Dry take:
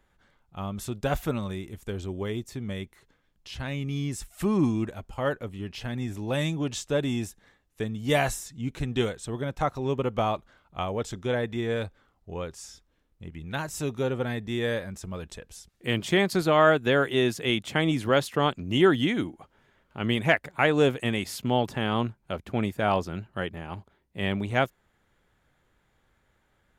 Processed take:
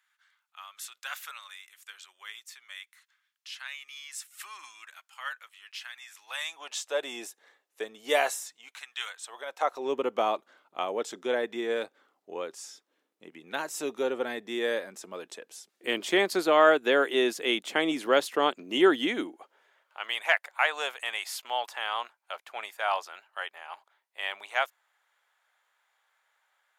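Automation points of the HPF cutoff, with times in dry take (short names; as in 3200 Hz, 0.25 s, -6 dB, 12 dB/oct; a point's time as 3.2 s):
HPF 24 dB/oct
6.17 s 1300 Hz
7.2 s 410 Hz
8.32 s 410 Hz
8.93 s 1300 Hz
9.94 s 300 Hz
19.28 s 300 Hz
20.01 s 750 Hz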